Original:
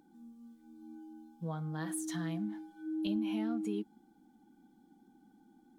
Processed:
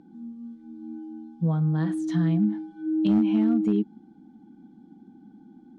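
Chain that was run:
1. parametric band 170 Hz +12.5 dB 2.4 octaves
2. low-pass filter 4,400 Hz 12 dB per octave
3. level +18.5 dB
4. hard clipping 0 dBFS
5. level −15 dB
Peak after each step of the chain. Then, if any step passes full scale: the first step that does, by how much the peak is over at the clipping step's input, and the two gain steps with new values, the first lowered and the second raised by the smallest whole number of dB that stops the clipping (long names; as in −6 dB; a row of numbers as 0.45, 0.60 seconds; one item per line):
−15.5, −15.5, +3.0, 0.0, −15.0 dBFS
step 3, 3.0 dB
step 3 +15.5 dB, step 5 −12 dB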